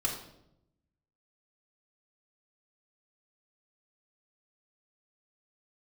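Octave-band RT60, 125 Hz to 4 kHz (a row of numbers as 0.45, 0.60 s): 1.3, 1.1, 0.90, 0.70, 0.60, 0.60 s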